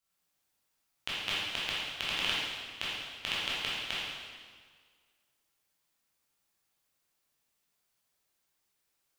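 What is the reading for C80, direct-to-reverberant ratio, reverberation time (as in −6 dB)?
0.0 dB, −9.0 dB, 1.7 s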